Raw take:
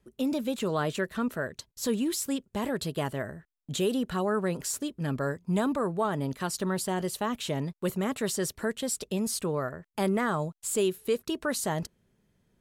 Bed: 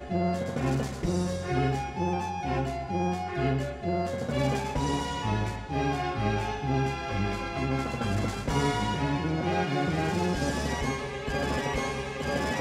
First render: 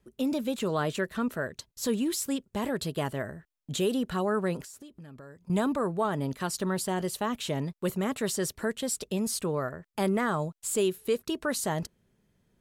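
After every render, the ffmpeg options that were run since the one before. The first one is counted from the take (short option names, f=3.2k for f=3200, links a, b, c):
-filter_complex "[0:a]asettb=1/sr,asplit=3[a][b][c];[a]atrim=end=4.614[d];[b]atrim=start=4.61:end=5.5,asetpts=PTS-STARTPTS,afade=t=in:d=0.004:c=qsin,afade=t=out:st=0.886:d=0.004:c=qsin,acompressor=threshold=-44dB:ratio=8:attack=3.2:release=140:knee=1:detection=peak[e];[c]atrim=start=5.496[f];[d][e]acrossfade=d=0.004:c1=hsin:c2=qsin[g];[g][f]acrossfade=d=0.004:c1=qsin:c2=hsin"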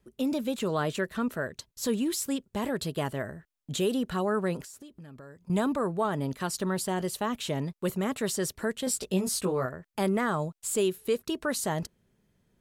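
-filter_complex "[0:a]asettb=1/sr,asplit=3[a][b][c];[a]atrim=end=8.854[d];[b]atrim=start=8.85:end=9.66,asetpts=PTS-STARTPTS,afade=t=in:d=0.004:c=qsin,afade=t=out:st=0.806:d=0.004:c=qsin,asplit=2[e][f];[f]adelay=16,volume=-3dB[g];[e][g]amix=inputs=2:normalize=0,atrim=end_sample=35721[h];[c]atrim=start=9.656[i];[d][h]acrossfade=d=0.004:c1=hsin:c2=qsin[j];[j][i]acrossfade=d=0.004:c1=qsin:c2=hsin"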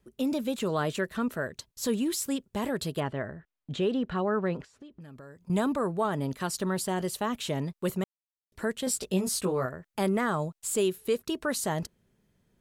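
-filter_complex "[0:a]asettb=1/sr,asplit=3[a][b][c];[a]atrim=end=3.004[d];[b]atrim=start=3:end=5.01,asetpts=PTS-STARTPTS,afade=t=in:d=0.004:c=qsin,afade=t=out:st=2.006:d=0.004:c=qsin,lowpass=3.1k[e];[c]atrim=start=5.006[f];[d][e]acrossfade=d=0.004:c1=hsin:c2=qsin[g];[g][f]acrossfade=d=0.004:c1=qsin:c2=hsin,asplit=3[h][i][j];[h]atrim=end=8.04,asetpts=PTS-STARTPTS,afade=t=out:st=8.036:d=0.004:c=hsin[k];[i]atrim=start=8.04:end=8.52,asetpts=PTS-STARTPTS,volume=0[l];[j]atrim=start=8.52,asetpts=PTS-STARTPTS,afade=t=in:d=0.004:c=hsin[m];[k][l][m]concat=n=3:v=0:a=1"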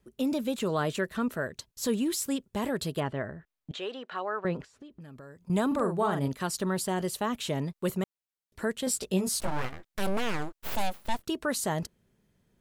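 -filter_complex "[0:a]asettb=1/sr,asplit=3[a][b][c];[a]atrim=end=3.714[d];[b]atrim=start=3.71:end=4.45,asetpts=PTS-STARTPTS,afade=t=in:d=0.004:c=qsin,afade=t=out:st=0.736:d=0.004:c=qsin,highpass=650,lowpass=7.1k[e];[c]atrim=start=4.446[f];[d][e]acrossfade=d=0.004:c1=hsin:c2=qsin[g];[g][f]acrossfade=d=0.004:c1=qsin:c2=hsin,asettb=1/sr,asplit=3[h][i][j];[h]atrim=end=5.674[k];[i]atrim=start=5.67:end=6.28,asetpts=PTS-STARTPTS,afade=t=in:d=0.004:c=qsin,afade=t=out:st=0.606:d=0.004:c=qsin,asplit=2[l][m];[m]adelay=43,volume=-5.5dB[n];[l][n]amix=inputs=2:normalize=0,atrim=end_sample=26901[o];[j]atrim=start=6.276[p];[k][o]acrossfade=d=0.004:c1=hsin:c2=qsin[q];[q][p]acrossfade=d=0.004:c1=qsin:c2=hsin,asettb=1/sr,asplit=3[r][s][t];[r]atrim=end=9.404[u];[s]atrim=start=9.4:end=11.28,asetpts=PTS-STARTPTS,afade=t=in:d=0.004:c=qsin,afade=t=out:st=1.876:d=0.004:c=qsin,aeval=exprs='abs(val(0))':c=same[v];[t]atrim=start=11.276[w];[u][v]acrossfade=d=0.004:c1=hsin:c2=qsin[x];[x][w]acrossfade=d=0.004:c1=qsin:c2=hsin"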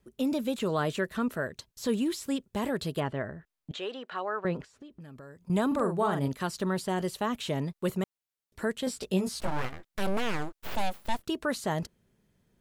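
-filter_complex "[0:a]acrossover=split=4800[a][b];[b]acompressor=threshold=-43dB:ratio=4:attack=1:release=60[c];[a][c]amix=inputs=2:normalize=0"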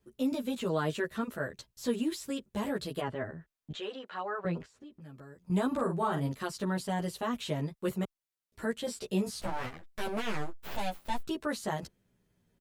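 -filter_complex "[0:a]asplit=2[a][b];[b]adelay=11.3,afreqshift=-0.77[c];[a][c]amix=inputs=2:normalize=1"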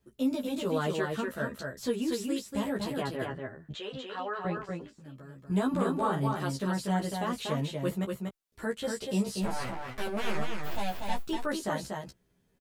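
-filter_complex "[0:a]asplit=2[a][b];[b]adelay=15,volume=-8dB[c];[a][c]amix=inputs=2:normalize=0,aecho=1:1:240:0.631"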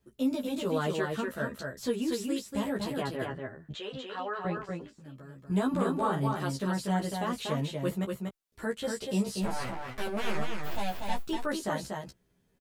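-af anull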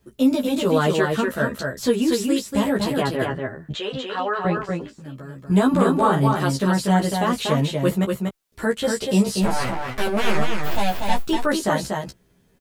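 -af "volume=11dB"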